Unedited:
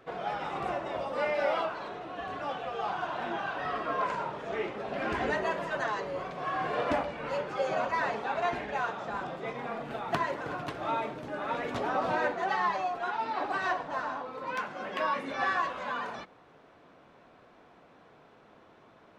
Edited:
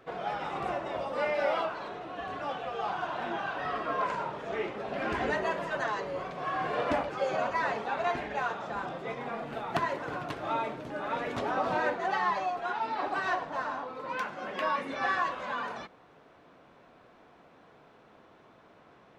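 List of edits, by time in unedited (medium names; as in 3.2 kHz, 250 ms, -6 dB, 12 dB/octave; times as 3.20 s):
7.09–7.47 s: delete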